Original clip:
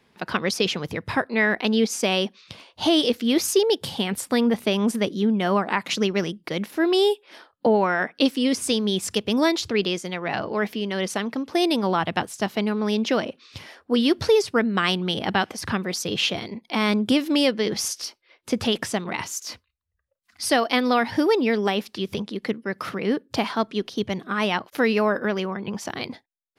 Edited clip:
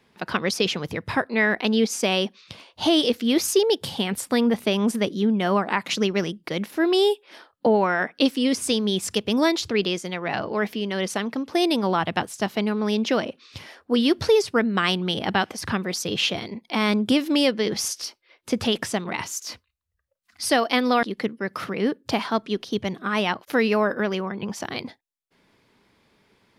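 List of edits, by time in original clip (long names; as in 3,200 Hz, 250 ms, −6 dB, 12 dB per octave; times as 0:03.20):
0:21.03–0:22.28: remove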